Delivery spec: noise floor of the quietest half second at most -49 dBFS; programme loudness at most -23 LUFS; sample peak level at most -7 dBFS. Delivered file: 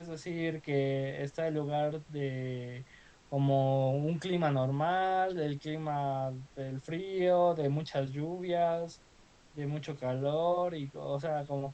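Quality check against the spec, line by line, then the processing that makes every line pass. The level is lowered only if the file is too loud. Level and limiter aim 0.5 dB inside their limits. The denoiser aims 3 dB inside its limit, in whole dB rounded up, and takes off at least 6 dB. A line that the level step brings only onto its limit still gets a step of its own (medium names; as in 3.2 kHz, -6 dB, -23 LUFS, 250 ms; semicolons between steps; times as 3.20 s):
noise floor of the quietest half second -60 dBFS: pass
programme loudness -33.0 LUFS: pass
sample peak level -18.0 dBFS: pass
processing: none needed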